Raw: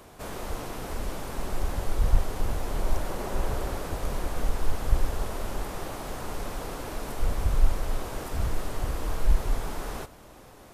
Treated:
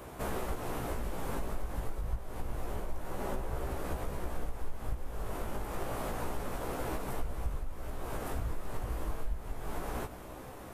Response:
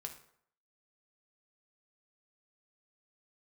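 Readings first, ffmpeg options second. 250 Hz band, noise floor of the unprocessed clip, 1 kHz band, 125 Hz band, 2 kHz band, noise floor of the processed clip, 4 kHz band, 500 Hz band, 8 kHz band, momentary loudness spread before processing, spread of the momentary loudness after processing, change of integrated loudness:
-4.0 dB, -50 dBFS, -4.0 dB, -7.5 dB, -5.0 dB, -46 dBFS, -9.0 dB, -4.0 dB, -7.5 dB, 8 LU, 5 LU, -7.0 dB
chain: -af "equalizer=f=5k:w=0.78:g=-7,acompressor=threshold=-35dB:ratio=6,flanger=delay=15.5:depth=2.8:speed=0.28,volume=7dB"

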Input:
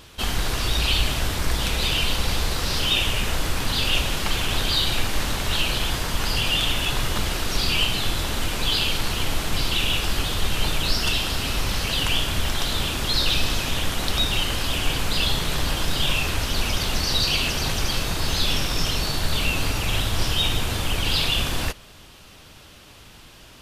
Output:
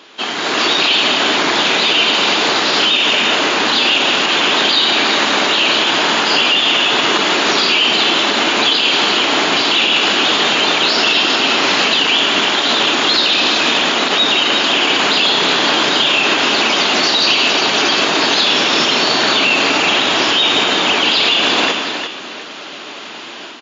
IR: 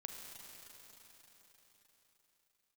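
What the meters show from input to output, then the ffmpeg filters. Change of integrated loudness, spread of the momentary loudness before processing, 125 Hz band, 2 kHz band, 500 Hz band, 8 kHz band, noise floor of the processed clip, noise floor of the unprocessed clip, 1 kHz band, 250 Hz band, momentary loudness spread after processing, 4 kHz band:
+11.5 dB, 4 LU, -9.0 dB, +14.0 dB, +14.0 dB, +5.5 dB, -30 dBFS, -47 dBFS, +14.5 dB, +11.0 dB, 2 LU, +12.0 dB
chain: -filter_complex "[0:a]highpass=f=260:w=0.5412,highpass=f=260:w=1.3066,equalizer=f=5.8k:w=2.2:g=-9,bandreject=f=510:w=12,dynaudnorm=f=350:g=3:m=11.5dB,asplit=2[a][b];[b]aecho=0:1:96|174|258|353|713:0.178|0.211|0.178|0.251|0.1[c];[a][c]amix=inputs=2:normalize=0,alimiter=level_in=10.5dB:limit=-1dB:release=50:level=0:latency=1,volume=-2.5dB" -ar 16000 -c:a libmp3lame -b:a 40k

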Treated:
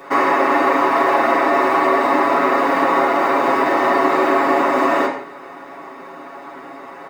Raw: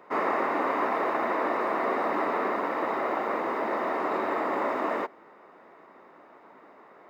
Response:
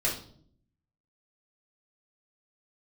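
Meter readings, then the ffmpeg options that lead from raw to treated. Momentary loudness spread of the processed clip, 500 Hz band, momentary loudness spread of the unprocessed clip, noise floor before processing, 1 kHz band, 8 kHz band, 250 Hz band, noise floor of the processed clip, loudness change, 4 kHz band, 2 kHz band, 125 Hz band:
20 LU, +11.5 dB, 2 LU, -54 dBFS, +12.5 dB, n/a, +13.0 dB, -36 dBFS, +12.5 dB, +15.5 dB, +13.0 dB, +11.0 dB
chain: -filter_complex "[0:a]highshelf=f=4k:g=11,aecho=1:1:7.2:1,acompressor=threshold=-26dB:ratio=6,asplit=2[a][b];[1:a]atrim=start_sample=2205,afade=t=out:st=0.16:d=0.01,atrim=end_sample=7497,asetrate=24255,aresample=44100[c];[b][c]afir=irnorm=-1:irlink=0,volume=-8.5dB[d];[a][d]amix=inputs=2:normalize=0,volume=7dB"

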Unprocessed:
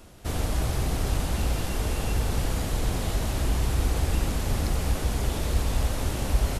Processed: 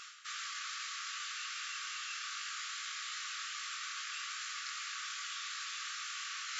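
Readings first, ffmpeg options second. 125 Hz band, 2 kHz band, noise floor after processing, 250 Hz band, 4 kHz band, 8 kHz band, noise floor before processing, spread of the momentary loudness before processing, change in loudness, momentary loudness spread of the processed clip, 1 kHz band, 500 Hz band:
under -40 dB, -2.0 dB, -43 dBFS, under -40 dB, -2.0 dB, -5.5 dB, -31 dBFS, 3 LU, -11.5 dB, 0 LU, -9.0 dB, under -40 dB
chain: -af "flanger=delay=19:depth=5.8:speed=2.5,afftfilt=real='re*between(b*sr/4096,1100,7600)':imag='im*between(b*sr/4096,1100,7600)':win_size=4096:overlap=0.75,areverse,acompressor=threshold=-57dB:ratio=5,areverse,volume=15.5dB"

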